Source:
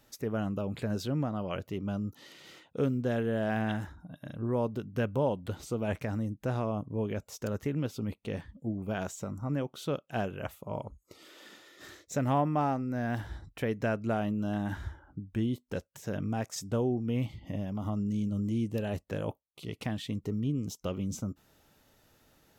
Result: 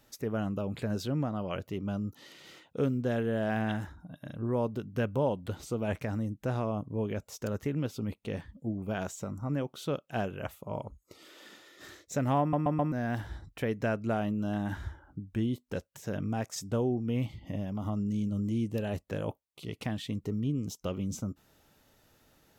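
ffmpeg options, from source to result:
-filter_complex "[0:a]asplit=5[a][b][c][d][e];[a]atrim=end=12.532[f];[b]atrim=start=12.398:end=12.532[g];[c]atrim=start=12.398:end=12.532[h];[d]atrim=start=12.398:end=12.532[i];[e]atrim=start=12.918[j];[f][g]acrossfade=d=0.004:c1=hsin:c2=hsin[k];[k][h]acrossfade=d=0.004:c1=hsin:c2=hsin[l];[l][i]acrossfade=d=0.004:c1=hsin:c2=hsin[m];[m][j]acrossfade=d=0.004:c1=hsin:c2=hsin"

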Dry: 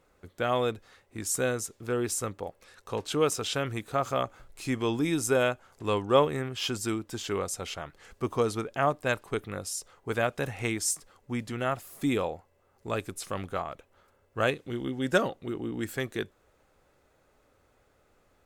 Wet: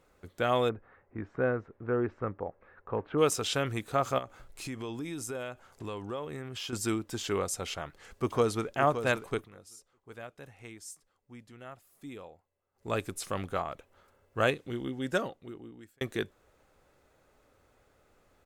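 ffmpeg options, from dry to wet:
-filter_complex "[0:a]asplit=3[a][b][c];[a]afade=t=out:st=0.68:d=0.02[d];[b]lowpass=f=1.8k:w=0.5412,lowpass=f=1.8k:w=1.3066,afade=t=in:st=0.68:d=0.02,afade=t=out:st=3.17:d=0.02[e];[c]afade=t=in:st=3.17:d=0.02[f];[d][e][f]amix=inputs=3:normalize=0,asettb=1/sr,asplit=3[g][h][i];[g]atrim=end=4.184[j];[h]atrim=start=4.18:end=6.73,asetpts=PTS-STARTPTS,afade=t=in:d=0.004:c=qsin,afade=t=out:st=2.546:d=0.004:c=qsin,acompressor=threshold=-36dB:ratio=4:attack=3.2:release=140:knee=1:detection=peak[k];[i]atrim=start=6.726[l];[j][k]acrossfade=d=0.004:c1=hsin:c2=qsin[m];[m][l]acrossfade=d=0.004:c1=qsin:c2=hsin,asplit=2[n][o];[o]afade=t=in:st=7.73:d=0.01,afade=t=out:st=8.74:d=0.01,aecho=0:1:570|1140|1710|2280:0.334965|0.117238|0.0410333|0.0143616[p];[n][p]amix=inputs=2:normalize=0,asplit=4[q][r][s][t];[q]atrim=end=9.49,asetpts=PTS-STARTPTS,afade=t=out:st=9.26:d=0.23:c=qsin:silence=0.141254[u];[r]atrim=start=9.49:end=12.74,asetpts=PTS-STARTPTS,volume=-17dB[v];[s]atrim=start=12.74:end=16.01,asetpts=PTS-STARTPTS,afade=t=in:d=0.23:c=qsin:silence=0.141254,afade=t=out:st=1.69:d=1.58[w];[t]atrim=start=16.01,asetpts=PTS-STARTPTS,afade=t=in:d=0.004:c=hsin[x];[u][v][w][x]concat=n=4:v=0:a=1"

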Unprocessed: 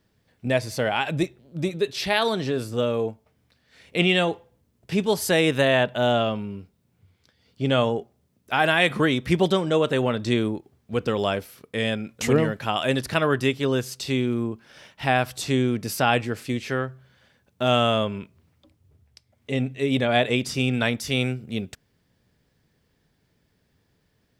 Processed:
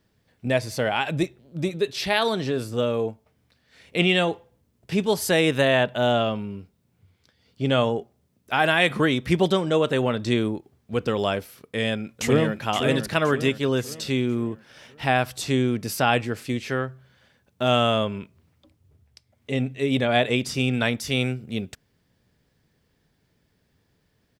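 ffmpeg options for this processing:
-filter_complex "[0:a]asplit=2[a][b];[b]afade=t=in:st=11.77:d=0.01,afade=t=out:st=12.65:d=0.01,aecho=0:1:520|1040|1560|2080|2600:0.446684|0.201008|0.0904534|0.040704|0.0183168[c];[a][c]amix=inputs=2:normalize=0"

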